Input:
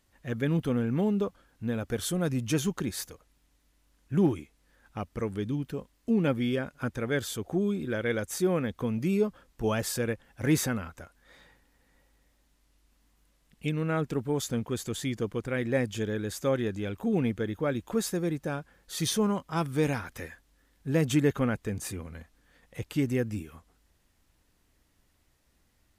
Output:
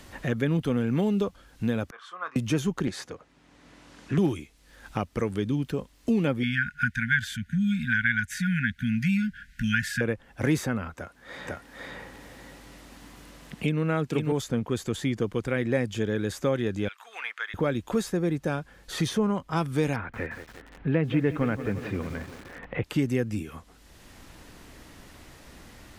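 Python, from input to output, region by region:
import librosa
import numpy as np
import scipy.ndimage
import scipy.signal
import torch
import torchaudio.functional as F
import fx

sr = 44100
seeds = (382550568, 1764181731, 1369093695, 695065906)

y = fx.chain(x, sr, fx.ladder_bandpass(hz=1200.0, resonance_pct=80),
    fx.doubler(ms=26.0, db=-12.5),
    fx.band_widen(depth_pct=40), at=(1.9, 2.36))
y = fx.chain(y, sr, fx.bandpass_edges(low_hz=130.0, high_hz=7700.0),
    fx.doppler_dist(depth_ms=0.47), at=(2.87, 4.18))
y = fx.chain(y, sr, fx.brickwall_bandstop(low_hz=250.0, high_hz=1400.0),
    fx.peak_eq(hz=1500.0, db=12.0, octaves=1.7), at=(6.43, 10.01))
y = fx.chain(y, sr, fx.highpass(hz=86.0, slope=12),
    fx.echo_single(ms=502, db=-4.0), at=(10.94, 14.32))
y = fx.chain(y, sr, fx.highpass(hz=1200.0, slope=24),
    fx.high_shelf(hz=8200.0, db=-8.5), at=(16.88, 17.54))
y = fx.chain(y, sr, fx.lowpass(hz=2600.0, slope=24),
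    fx.echo_crushed(ms=175, feedback_pct=55, bits=8, wet_db=-13), at=(19.96, 22.84))
y = fx.high_shelf(y, sr, hz=9300.0, db=-8.5)
y = fx.band_squash(y, sr, depth_pct=70)
y = y * 10.0 ** (2.5 / 20.0)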